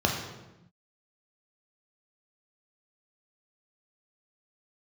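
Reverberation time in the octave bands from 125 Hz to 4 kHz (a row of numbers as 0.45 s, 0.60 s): 1.5 s, 1.4 s, 1.0 s, 0.90 s, 0.85 s, 0.75 s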